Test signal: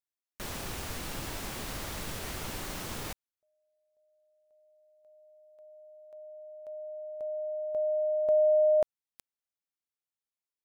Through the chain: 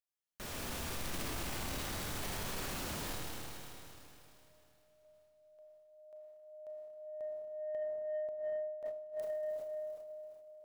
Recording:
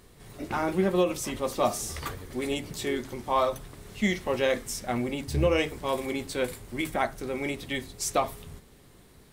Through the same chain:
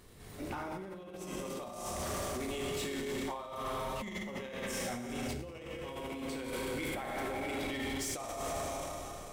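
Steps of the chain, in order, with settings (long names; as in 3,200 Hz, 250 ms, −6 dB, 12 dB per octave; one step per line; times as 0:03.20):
four-comb reverb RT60 3.1 s, combs from 26 ms, DRR −2 dB
compressor whose output falls as the input rises −29 dBFS, ratio −0.5
soft clipping −24 dBFS
transient designer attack 0 dB, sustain +7 dB
level −7.5 dB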